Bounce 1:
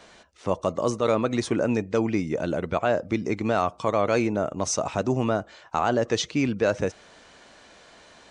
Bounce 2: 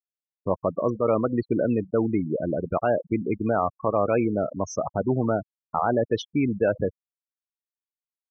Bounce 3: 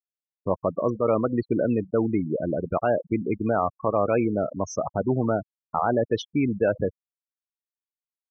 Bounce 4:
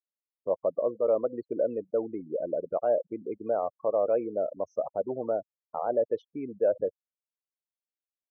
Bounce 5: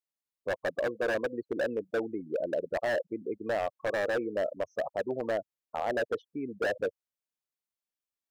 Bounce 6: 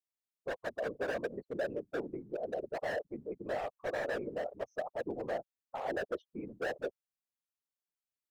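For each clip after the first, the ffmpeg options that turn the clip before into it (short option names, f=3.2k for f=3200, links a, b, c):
-af "afftfilt=real='re*gte(hypot(re,im),0.0891)':imag='im*gte(hypot(re,im),0.0891)':win_size=1024:overlap=0.75,aemphasis=mode=reproduction:type=75fm"
-af anull
-af "bandpass=f=550:t=q:w=3:csg=0"
-af "aeval=exprs='0.0708*(abs(mod(val(0)/0.0708+3,4)-2)-1)':c=same"
-af "afftfilt=real='hypot(re,im)*cos(2*PI*random(0))':imag='hypot(re,im)*sin(2*PI*random(1))':win_size=512:overlap=0.75"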